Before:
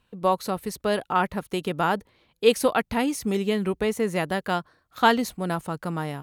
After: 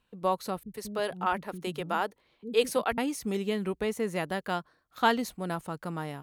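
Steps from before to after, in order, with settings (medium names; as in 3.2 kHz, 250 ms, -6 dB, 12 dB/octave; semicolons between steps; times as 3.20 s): peaking EQ 92 Hz -6 dB 0.79 oct; 0.63–2.98 s: bands offset in time lows, highs 110 ms, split 250 Hz; trim -5.5 dB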